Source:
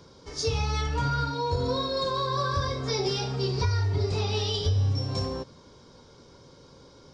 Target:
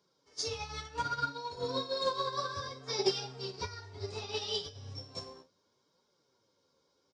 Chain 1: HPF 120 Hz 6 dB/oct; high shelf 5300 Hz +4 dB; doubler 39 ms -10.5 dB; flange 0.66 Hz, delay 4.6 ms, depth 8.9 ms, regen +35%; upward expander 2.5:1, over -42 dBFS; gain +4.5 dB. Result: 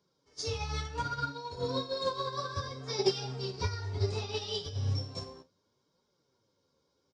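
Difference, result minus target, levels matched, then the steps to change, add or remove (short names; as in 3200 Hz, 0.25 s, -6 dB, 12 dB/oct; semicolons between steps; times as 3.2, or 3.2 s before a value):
125 Hz band +9.0 dB
change: HPF 360 Hz 6 dB/oct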